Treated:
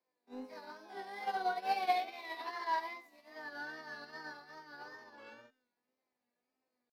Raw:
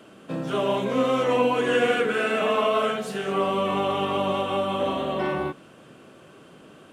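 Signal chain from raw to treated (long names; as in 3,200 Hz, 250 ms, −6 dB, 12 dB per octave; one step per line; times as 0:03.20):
pitch shifter +7.5 semitones
tuned comb filter 250 Hz, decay 0.88 s, mix 90%
tape wow and flutter 62 cents
in parallel at −11 dB: soft clipping −38 dBFS, distortion −11 dB
on the sum: expander for the loud parts 2.5 to 1, over −50 dBFS
level +4.5 dB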